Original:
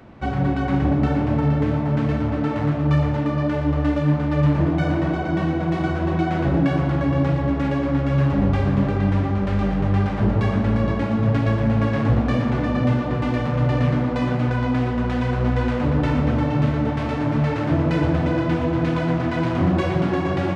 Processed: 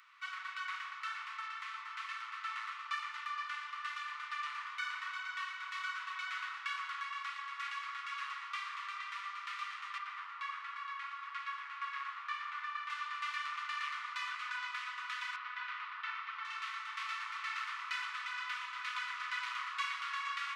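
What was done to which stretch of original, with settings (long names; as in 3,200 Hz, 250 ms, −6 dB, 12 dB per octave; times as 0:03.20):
0:09.98–0:12.90: low-pass filter 1,900 Hz 6 dB per octave
0:15.36–0:16.45: high-frequency loss of the air 230 metres
whole clip: Butterworth high-pass 1,100 Hz 72 dB per octave; notch filter 1,600 Hz, Q 7.4; level −4 dB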